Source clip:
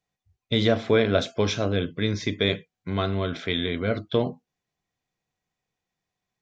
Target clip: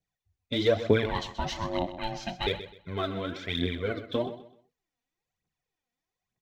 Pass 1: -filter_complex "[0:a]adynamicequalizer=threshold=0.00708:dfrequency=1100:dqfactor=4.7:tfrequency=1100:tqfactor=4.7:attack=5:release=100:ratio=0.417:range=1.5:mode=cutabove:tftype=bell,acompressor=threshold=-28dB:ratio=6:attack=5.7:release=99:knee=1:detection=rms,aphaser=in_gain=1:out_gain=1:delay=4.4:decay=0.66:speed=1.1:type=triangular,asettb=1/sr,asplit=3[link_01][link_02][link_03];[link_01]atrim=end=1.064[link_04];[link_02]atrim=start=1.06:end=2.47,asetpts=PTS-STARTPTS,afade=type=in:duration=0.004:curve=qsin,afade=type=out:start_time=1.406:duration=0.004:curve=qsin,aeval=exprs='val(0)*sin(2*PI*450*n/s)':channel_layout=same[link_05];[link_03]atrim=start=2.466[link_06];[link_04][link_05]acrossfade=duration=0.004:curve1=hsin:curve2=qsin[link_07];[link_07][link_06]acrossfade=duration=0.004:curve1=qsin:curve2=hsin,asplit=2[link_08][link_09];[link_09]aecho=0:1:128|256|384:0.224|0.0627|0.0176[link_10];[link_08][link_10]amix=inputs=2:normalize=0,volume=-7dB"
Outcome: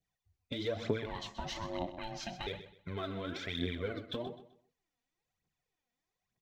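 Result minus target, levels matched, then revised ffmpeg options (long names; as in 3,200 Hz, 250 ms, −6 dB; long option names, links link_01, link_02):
downward compressor: peak gain reduction +13.5 dB
-filter_complex "[0:a]adynamicequalizer=threshold=0.00708:dfrequency=1100:dqfactor=4.7:tfrequency=1100:tqfactor=4.7:attack=5:release=100:ratio=0.417:range=1.5:mode=cutabove:tftype=bell,aphaser=in_gain=1:out_gain=1:delay=4.4:decay=0.66:speed=1.1:type=triangular,asettb=1/sr,asplit=3[link_01][link_02][link_03];[link_01]atrim=end=1.064[link_04];[link_02]atrim=start=1.06:end=2.47,asetpts=PTS-STARTPTS,afade=type=in:duration=0.004:curve=qsin,afade=type=out:start_time=1.406:duration=0.004:curve=qsin,aeval=exprs='val(0)*sin(2*PI*450*n/s)':channel_layout=same[link_05];[link_03]atrim=start=2.466[link_06];[link_04][link_05]acrossfade=duration=0.004:curve1=hsin:curve2=qsin[link_07];[link_07][link_06]acrossfade=duration=0.004:curve1=qsin:curve2=hsin,asplit=2[link_08][link_09];[link_09]aecho=0:1:128|256|384:0.224|0.0627|0.0176[link_10];[link_08][link_10]amix=inputs=2:normalize=0,volume=-7dB"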